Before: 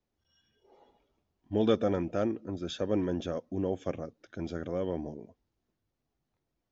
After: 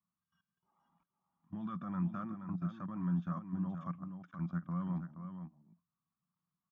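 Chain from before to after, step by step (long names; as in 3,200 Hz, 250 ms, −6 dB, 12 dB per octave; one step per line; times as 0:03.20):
output level in coarse steps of 18 dB
tape wow and flutter 25 cents
pair of resonant band-passes 450 Hz, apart 2.7 octaves
on a send: single-tap delay 475 ms −8.5 dB
on the sum: level +11 dB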